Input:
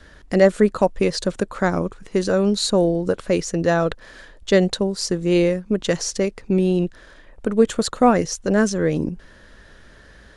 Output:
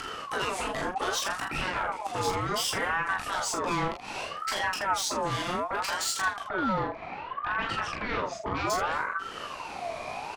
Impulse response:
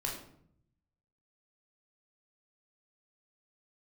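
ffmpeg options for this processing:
-filter_complex "[0:a]asettb=1/sr,asplit=3[s0][s1][s2];[s0]atrim=end=6.434[s3];[s1]atrim=start=6.43:end=8.7,asetpts=PTS-STARTPTS,afade=t=in:d=0.004:c=qsin,afade=t=out:st=2.266:d=0.004:c=qsin,lowpass=1900[s4];[s2]atrim=start=8.696[s5];[s3][s4]acrossfade=d=0.004:c1=hsin:c2=qsin[s6];[s6][s5]acrossfade=d=0.004:c1=qsin:c2=hsin,afftfilt=real='re*lt(hypot(re,im),0.794)':imag='im*lt(hypot(re,im),0.794)':win_size=1024:overlap=0.75,acompressor=threshold=0.0447:ratio=2.5,alimiter=limit=0.075:level=0:latency=1:release=177,acompressor=mode=upward:threshold=0.0126:ratio=2.5,aeval=exprs='0.0891*sin(PI/2*2.24*val(0)/0.0891)':c=same,aecho=1:1:20|36|47|80:0.596|0.668|0.473|0.355,aeval=exprs='val(0)*sin(2*PI*1000*n/s+1000*0.35/0.65*sin(2*PI*0.65*n/s))':c=same,volume=0.596"

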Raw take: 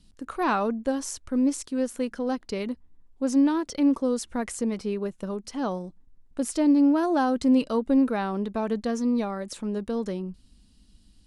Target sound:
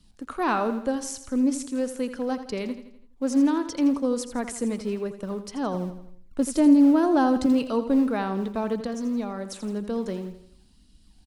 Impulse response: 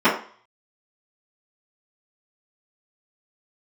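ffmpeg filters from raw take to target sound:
-filter_complex "[0:a]asettb=1/sr,asplit=3[s0][s1][s2];[s0]atrim=end=5.744[s3];[s1]atrim=start=5.74:end=7.46,asetpts=PTS-STARTPTS,afade=t=in:d=0.004:c=qsin,afade=t=out:st=1.716:d=0.004:c=qsin,lowshelf=f=360:g=6.5[s4];[s2]atrim=start=7.456[s5];[s3][s4]acrossfade=d=0.004:c1=hsin:c2=qsin[s6];[s6][s5]acrossfade=d=0.004:c1=qsin:c2=hsin,asettb=1/sr,asplit=3[s7][s8][s9];[s7]atrim=end=8.804[s10];[s8]atrim=start=8.8:end=9.88,asetpts=PTS-STARTPTS,afade=t=in:d=0.004:c=qsin,afade=t=out:st=1.076:d=0.004:c=qsin,acrossover=split=170[s11][s12];[s12]acompressor=threshold=0.0398:ratio=6[s13];[s11][s13]amix=inputs=2:normalize=0[s14];[s9]atrim=start=9.876[s15];[s10][s14]acrossfade=d=0.004:c1=hsin:c2=qsin[s16];[s16][s15]acrossfade=d=0.004:c1=qsin:c2=hsin,acrossover=split=130[s17][s18];[s17]acrusher=samples=32:mix=1:aa=0.000001:lfo=1:lforange=51.2:lforate=1.9[s19];[s19][s18]amix=inputs=2:normalize=0,aecho=1:1:83|166|249|332|415:0.266|0.128|0.0613|0.0294|0.0141"

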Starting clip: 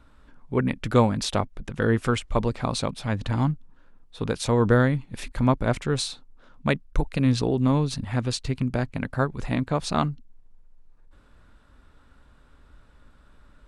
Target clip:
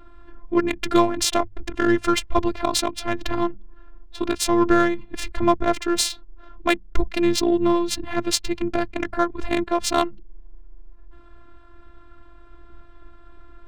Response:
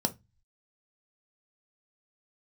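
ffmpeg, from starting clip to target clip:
-filter_complex "[0:a]afftfilt=real='hypot(re,im)*cos(PI*b)':imag='0':win_size=512:overlap=0.75,highshelf=f=4800:g=11,asplit=2[s0][s1];[s1]acompressor=threshold=0.0112:ratio=6,volume=1[s2];[s0][s2]amix=inputs=2:normalize=0,bandreject=f=50:t=h:w=6,bandreject=f=100:t=h:w=6,bandreject=f=150:t=h:w=6,bandreject=f=200:t=h:w=6,adynamicsmooth=sensitivity=3:basefreq=2100,volume=2.11"

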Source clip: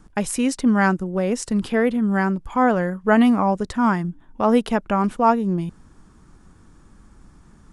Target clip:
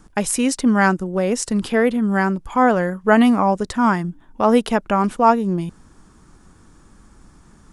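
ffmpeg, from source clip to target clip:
-af "bass=f=250:g=-3,treble=f=4000:g=3,volume=1.41"

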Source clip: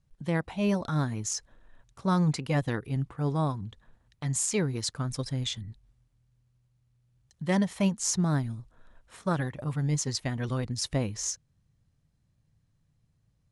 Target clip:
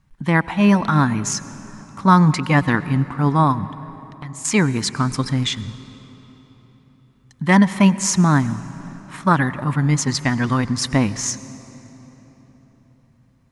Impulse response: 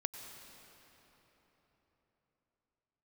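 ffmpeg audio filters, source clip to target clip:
-filter_complex "[0:a]equalizer=f=250:t=o:w=1:g=8,equalizer=f=500:t=o:w=1:g=-6,equalizer=f=1000:t=o:w=1:g=10,equalizer=f=2000:t=o:w=1:g=7,asettb=1/sr,asplit=3[s0][s1][s2];[s0]atrim=end=3.654[s3];[s1]atrim=start=3.65:end=4.45,asetpts=PTS-STARTPTS,afade=t=in:d=0.004:c=qsin,afade=t=out:st=0.796:d=0.004:c=qsin,acompressor=threshold=0.00398:ratio=2.5[s4];[s2]atrim=start=4.446[s5];[s3][s4]acrossfade=d=0.004:c1=hsin:c2=qsin[s6];[s6][s5]acrossfade=d=0.004:c1=qsin:c2=hsin,asplit=2[s7][s8];[1:a]atrim=start_sample=2205[s9];[s8][s9]afir=irnorm=-1:irlink=0,volume=0.473[s10];[s7][s10]amix=inputs=2:normalize=0,volume=1.68"

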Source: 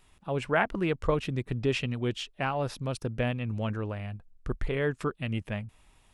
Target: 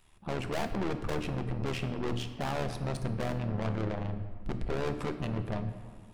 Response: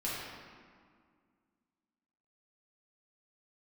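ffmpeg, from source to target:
-filter_complex "[0:a]bandreject=f=60:t=h:w=6,bandreject=f=120:t=h:w=6,bandreject=f=180:t=h:w=6,bandreject=f=240:t=h:w=6,bandreject=f=300:t=h:w=6,acrossover=split=1100[s0][s1];[s0]dynaudnorm=f=140:g=3:m=4.22[s2];[s1]alimiter=limit=0.0631:level=0:latency=1:release=390[s3];[s2][s3]amix=inputs=2:normalize=0,aeval=exprs='(tanh(31.6*val(0)+0.4)-tanh(0.4))/31.6':c=same,tremolo=f=76:d=0.71,asplit=2[s4][s5];[1:a]atrim=start_sample=2205,highshelf=f=7900:g=11[s6];[s5][s6]afir=irnorm=-1:irlink=0,volume=0.251[s7];[s4][s7]amix=inputs=2:normalize=0"

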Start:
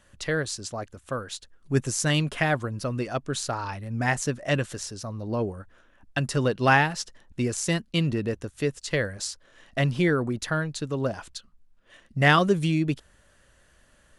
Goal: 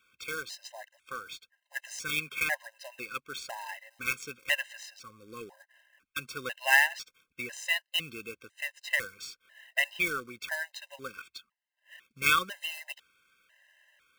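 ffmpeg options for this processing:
-af "bandpass=f=2300:t=q:w=2.3:csg=0,acrusher=bits=2:mode=log:mix=0:aa=0.000001,afftfilt=real='re*gt(sin(2*PI*1*pts/sr)*(1-2*mod(floor(b*sr/1024/530),2)),0)':imag='im*gt(sin(2*PI*1*pts/sr)*(1-2*mod(floor(b*sr/1024/530),2)),0)':win_size=1024:overlap=0.75,volume=2.11"

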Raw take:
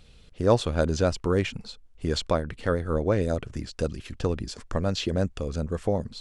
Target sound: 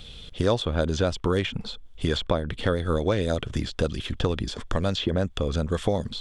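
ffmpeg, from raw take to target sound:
-filter_complex "[0:a]equalizer=f=3400:t=o:w=0.3:g=14,acrossover=split=790|2100[s0][s1][s2];[s0]acompressor=threshold=0.0282:ratio=4[s3];[s1]acompressor=threshold=0.00891:ratio=4[s4];[s2]acompressor=threshold=0.00501:ratio=4[s5];[s3][s4][s5]amix=inputs=3:normalize=0,volume=2.66"

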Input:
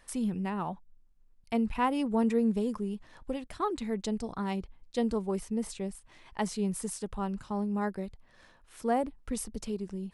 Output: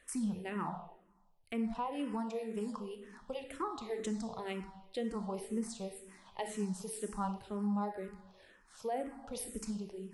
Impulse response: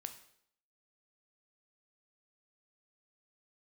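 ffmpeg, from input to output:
-filter_complex "[0:a]lowshelf=f=130:g=-8.5[s0];[1:a]atrim=start_sample=2205,asetrate=31752,aresample=44100[s1];[s0][s1]afir=irnorm=-1:irlink=0,asettb=1/sr,asplit=3[s2][s3][s4];[s2]atrim=end=1.764[s5];[s3]atrim=start=1.76:end=4,asetpts=PTS-STARTPTS,afade=t=in:d=0.004:c=qsin,afade=t=out:st=2.236:d=0.004:c=qsin,acrossover=split=300|1000[s6][s7][s8];[s6]acompressor=threshold=0.00631:ratio=4[s9];[s7]acompressor=threshold=0.0141:ratio=4[s10];[s8]acompressor=threshold=0.00562:ratio=4[s11];[s9][s10][s11]amix=inputs=3:normalize=0[s12];[s4]atrim=start=3.996[s13];[s5][s12]acrossfade=d=0.004:c1=hsin:c2=qsin[s14];[s14][s13]acrossfade=d=0.004:c1=qsin:c2=hsin,alimiter=level_in=1.41:limit=0.0631:level=0:latency=1:release=401,volume=0.708,asplit=2[s15][s16];[s16]afreqshift=-2[s17];[s15][s17]amix=inputs=2:normalize=1,volume=1.33"

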